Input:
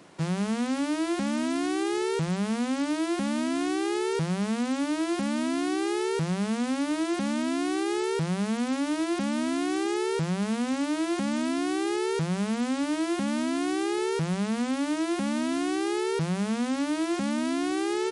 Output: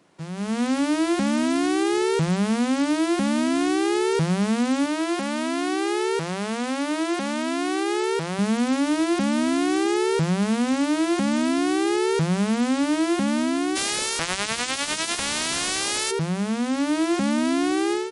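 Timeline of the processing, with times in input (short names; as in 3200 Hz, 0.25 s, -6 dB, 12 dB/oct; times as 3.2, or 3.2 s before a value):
4.86–8.39 tone controls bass -12 dB, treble -2 dB
13.75–16.1 spectral limiter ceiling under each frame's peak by 29 dB
whole clip: AGC gain up to 14 dB; gain -8 dB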